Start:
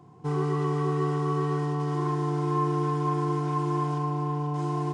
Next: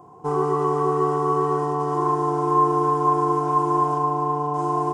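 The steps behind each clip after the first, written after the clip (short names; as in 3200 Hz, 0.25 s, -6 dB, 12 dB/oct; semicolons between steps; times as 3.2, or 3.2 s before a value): graphic EQ 125/250/500/1000/2000/4000 Hz -12/-5/+3/+6/-10/-11 dB; gain +7.5 dB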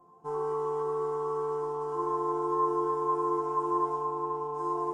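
resonator bank F3 major, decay 0.27 s; gain +2.5 dB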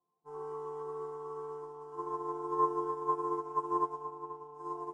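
upward expander 2.5:1, over -42 dBFS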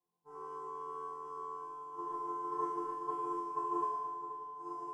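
flutter echo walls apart 4 m, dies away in 1.1 s; gain -6 dB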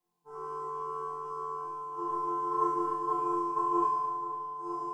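reverb RT60 0.40 s, pre-delay 5 ms, DRR 3 dB; gain +4 dB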